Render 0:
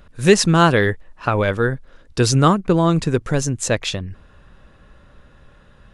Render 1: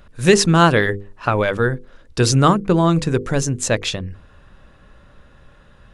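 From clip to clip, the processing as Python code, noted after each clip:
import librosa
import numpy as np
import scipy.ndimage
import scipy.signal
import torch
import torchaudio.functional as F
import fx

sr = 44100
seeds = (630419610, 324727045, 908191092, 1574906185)

y = fx.hum_notches(x, sr, base_hz=50, count=10)
y = y * 10.0 ** (1.0 / 20.0)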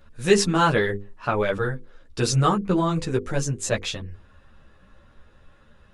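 y = fx.ensemble(x, sr)
y = y * 10.0 ** (-3.0 / 20.0)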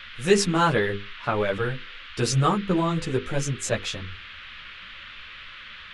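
y = fx.dmg_noise_band(x, sr, seeds[0], low_hz=1200.0, high_hz=3500.0, level_db=-41.0)
y = y * 10.0 ** (-1.5 / 20.0)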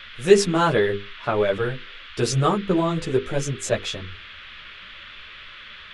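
y = fx.small_body(x, sr, hz=(400.0, 620.0, 3400.0), ring_ms=25, db=6)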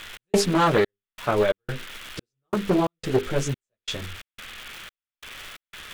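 y = fx.dmg_crackle(x, sr, seeds[1], per_s=580.0, level_db=-30.0)
y = fx.step_gate(y, sr, bpm=89, pattern='x.xxx..x', floor_db=-60.0, edge_ms=4.5)
y = fx.doppler_dist(y, sr, depth_ms=0.44)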